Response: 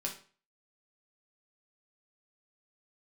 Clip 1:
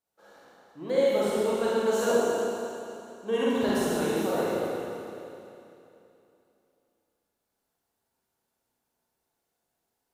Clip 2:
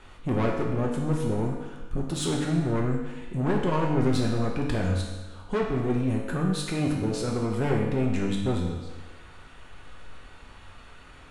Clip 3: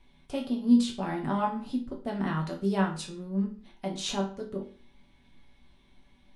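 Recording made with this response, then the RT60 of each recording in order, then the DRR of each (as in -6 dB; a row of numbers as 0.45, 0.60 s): 3; 2.9, 1.3, 0.40 s; -9.0, -2.0, -1.0 dB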